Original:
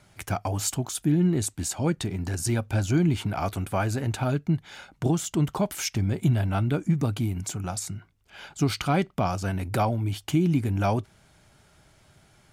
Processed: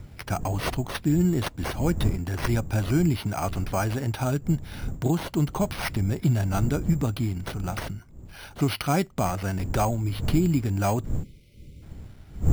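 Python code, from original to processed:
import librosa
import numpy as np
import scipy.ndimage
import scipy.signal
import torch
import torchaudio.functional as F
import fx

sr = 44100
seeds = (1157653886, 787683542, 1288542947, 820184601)

y = fx.dmg_wind(x, sr, seeds[0], corner_hz=110.0, level_db=-33.0)
y = np.repeat(y[::6], 6)[:len(y)]
y = fx.spec_box(y, sr, start_s=11.23, length_s=0.59, low_hz=590.0, high_hz=2000.0, gain_db=-26)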